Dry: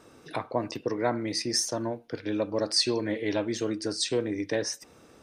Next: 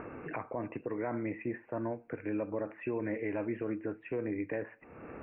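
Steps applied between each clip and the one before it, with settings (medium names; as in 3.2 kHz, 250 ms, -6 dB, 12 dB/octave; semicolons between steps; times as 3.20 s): upward compressor, threshold -28 dBFS; steep low-pass 2.6 kHz 96 dB/octave; peak limiter -21.5 dBFS, peak gain reduction 7.5 dB; trim -4 dB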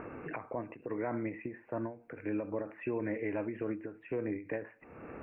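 endings held to a fixed fall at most 150 dB/s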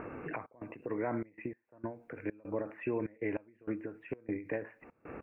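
trance gate "xxx.xxxx.x.." 98 bpm -24 dB; trim +1 dB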